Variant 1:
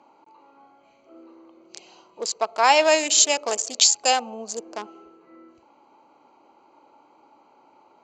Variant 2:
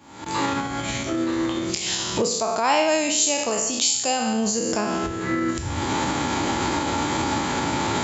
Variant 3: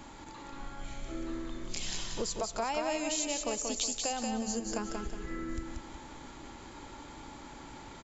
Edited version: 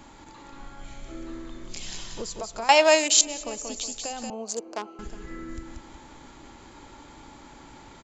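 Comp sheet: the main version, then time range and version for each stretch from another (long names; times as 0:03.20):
3
0:02.69–0:03.21: punch in from 1
0:04.30–0:04.99: punch in from 1
not used: 2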